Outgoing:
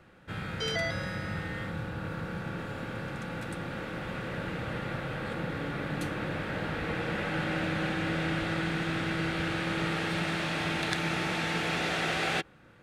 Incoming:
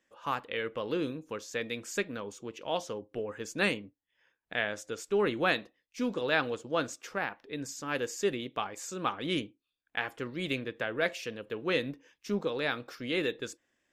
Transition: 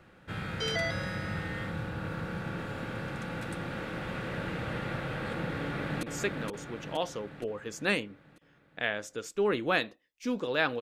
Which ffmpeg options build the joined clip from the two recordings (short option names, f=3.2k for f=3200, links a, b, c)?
-filter_complex "[0:a]apad=whole_dur=10.81,atrim=end=10.81,atrim=end=6.032[a];[1:a]atrim=start=1.768:end=6.55[b];[a][b]acrossfade=d=0.004:c1=hsin:c2=hsin,asplit=2[c][d];[d]afade=t=in:st=5.59:d=0.01,afade=t=out:st=6.03:d=0.01,aecho=0:1:470|940|1410|1880|2350|2820|3290:0.630957|0.347027|0.190865|0.104976|0.0577365|0.0317551|0.0174653[e];[c][e]amix=inputs=2:normalize=0"